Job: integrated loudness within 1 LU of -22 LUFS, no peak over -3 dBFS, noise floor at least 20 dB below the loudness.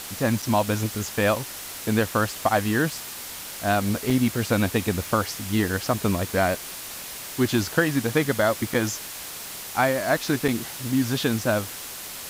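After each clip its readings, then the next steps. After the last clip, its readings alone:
dropouts 4; longest dropout 4.4 ms; noise floor -37 dBFS; noise floor target -45 dBFS; loudness -25.0 LUFS; peak -6.0 dBFS; loudness target -22.0 LUFS
-> interpolate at 0.42/4.1/8.74/10.48, 4.4 ms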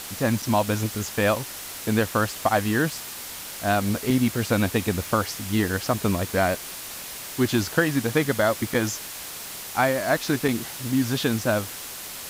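dropouts 0; noise floor -37 dBFS; noise floor target -45 dBFS
-> noise print and reduce 8 dB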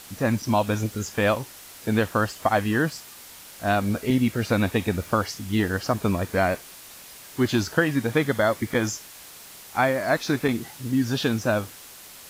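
noise floor -45 dBFS; loudness -24.5 LUFS; peak -6.5 dBFS; loudness target -22.0 LUFS
-> gain +2.5 dB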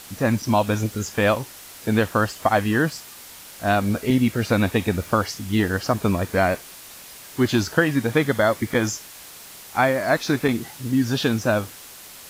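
loudness -22.0 LUFS; peak -4.0 dBFS; noise floor -42 dBFS

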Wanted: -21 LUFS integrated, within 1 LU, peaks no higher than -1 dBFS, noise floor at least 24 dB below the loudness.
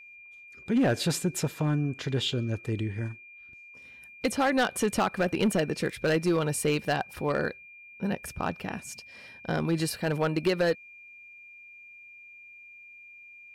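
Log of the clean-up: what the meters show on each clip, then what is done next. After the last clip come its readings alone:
clipped 0.7%; flat tops at -18.5 dBFS; steady tone 2400 Hz; tone level -47 dBFS; loudness -28.5 LUFS; peak -18.5 dBFS; loudness target -21.0 LUFS
-> clip repair -18.5 dBFS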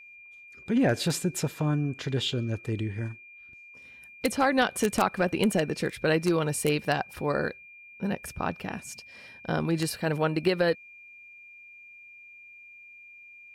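clipped 0.0%; steady tone 2400 Hz; tone level -47 dBFS
-> notch 2400 Hz, Q 30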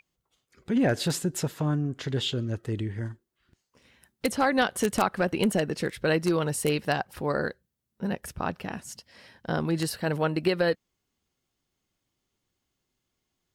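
steady tone none; loudness -28.0 LUFS; peak -9.5 dBFS; loudness target -21.0 LUFS
-> gain +7 dB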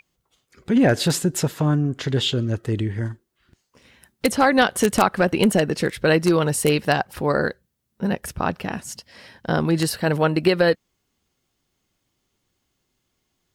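loudness -21.0 LUFS; peak -2.5 dBFS; noise floor -75 dBFS

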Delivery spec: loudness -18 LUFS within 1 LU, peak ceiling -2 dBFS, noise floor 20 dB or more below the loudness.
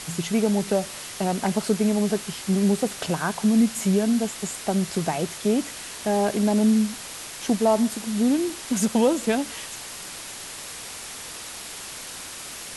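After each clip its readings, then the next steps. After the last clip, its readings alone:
noise floor -38 dBFS; noise floor target -45 dBFS; loudness -24.5 LUFS; peak -9.5 dBFS; loudness target -18.0 LUFS
-> denoiser 7 dB, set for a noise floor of -38 dBFS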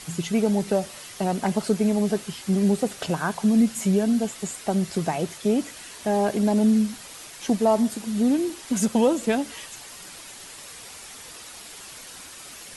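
noise floor -42 dBFS; noise floor target -44 dBFS
-> denoiser 6 dB, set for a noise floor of -42 dBFS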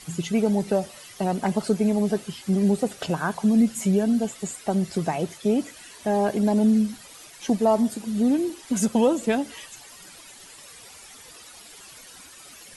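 noise floor -46 dBFS; loudness -24.0 LUFS; peak -9.5 dBFS; loudness target -18.0 LUFS
-> gain +6 dB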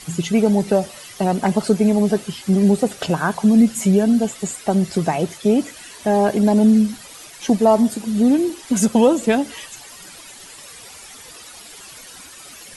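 loudness -18.0 LUFS; peak -3.5 dBFS; noise floor -40 dBFS

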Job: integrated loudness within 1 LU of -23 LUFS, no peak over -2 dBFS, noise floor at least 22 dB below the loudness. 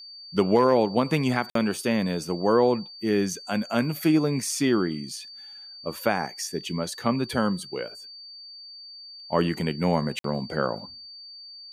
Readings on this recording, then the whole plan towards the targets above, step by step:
dropouts 2; longest dropout 53 ms; steady tone 4600 Hz; tone level -41 dBFS; loudness -25.5 LUFS; peak -8.0 dBFS; loudness target -23.0 LUFS
-> interpolate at 1.5/10.19, 53 ms; notch 4600 Hz, Q 30; gain +2.5 dB

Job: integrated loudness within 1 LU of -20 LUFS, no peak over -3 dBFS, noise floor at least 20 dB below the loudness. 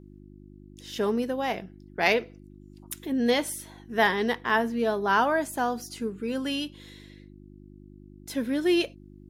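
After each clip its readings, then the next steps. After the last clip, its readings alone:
hum 50 Hz; harmonics up to 350 Hz; hum level -48 dBFS; loudness -27.0 LUFS; peak -8.5 dBFS; loudness target -20.0 LUFS
-> de-hum 50 Hz, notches 7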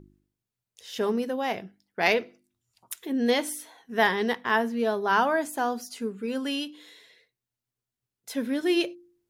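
hum none; loudness -27.0 LUFS; peak -8.5 dBFS; loudness target -20.0 LUFS
-> gain +7 dB; limiter -3 dBFS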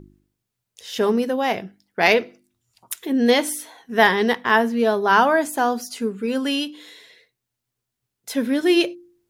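loudness -20.0 LUFS; peak -3.0 dBFS; noise floor -82 dBFS

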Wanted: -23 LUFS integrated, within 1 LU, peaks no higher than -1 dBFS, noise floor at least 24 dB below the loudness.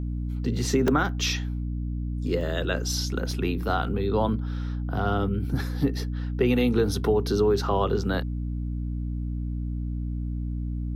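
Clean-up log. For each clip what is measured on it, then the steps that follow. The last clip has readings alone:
dropouts 3; longest dropout 2.6 ms; hum 60 Hz; harmonics up to 300 Hz; hum level -27 dBFS; loudness -27.0 LUFS; peak -10.0 dBFS; loudness target -23.0 LUFS
-> interpolate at 0.88/2.41/3.31, 2.6 ms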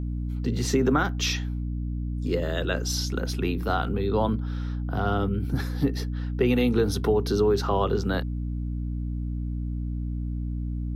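dropouts 0; hum 60 Hz; harmonics up to 300 Hz; hum level -27 dBFS
-> de-hum 60 Hz, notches 5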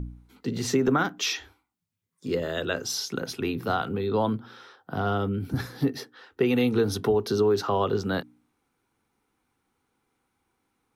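hum none; loudness -27.0 LUFS; peak -11.5 dBFS; loudness target -23.0 LUFS
-> gain +4 dB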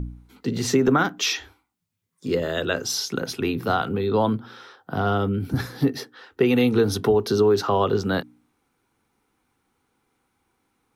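loudness -23.0 LUFS; peak -7.5 dBFS; noise floor -73 dBFS

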